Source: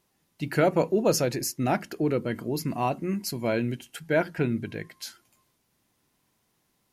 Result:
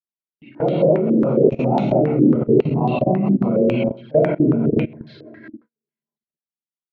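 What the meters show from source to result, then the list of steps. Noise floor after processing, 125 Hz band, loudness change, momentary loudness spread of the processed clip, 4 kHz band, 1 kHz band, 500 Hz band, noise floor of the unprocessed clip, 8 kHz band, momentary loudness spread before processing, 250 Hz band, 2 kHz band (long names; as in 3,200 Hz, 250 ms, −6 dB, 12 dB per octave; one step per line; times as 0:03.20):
below −85 dBFS, +10.0 dB, +9.5 dB, 6 LU, can't be measured, +5.0 dB, +9.5 dB, −73 dBFS, below −30 dB, 14 LU, +12.0 dB, −3.0 dB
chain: feedback delay that plays each chunk backwards 203 ms, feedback 48%, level −8 dB
low-shelf EQ 210 Hz +9.5 dB
double-tracking delay 13 ms −12 dB
four-comb reverb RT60 1.3 s, combs from 31 ms, DRR −9.5 dB
rotating-speaker cabinet horn 6 Hz
high-pass filter 120 Hz 24 dB per octave
high-frequency loss of the air 300 metres
output level in coarse steps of 20 dB
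flanger swept by the level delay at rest 5.3 ms, full sweep at −22 dBFS
noise gate −54 dBFS, range −35 dB
low-pass on a step sequencer 7.3 Hz 300–3,800 Hz
level +1.5 dB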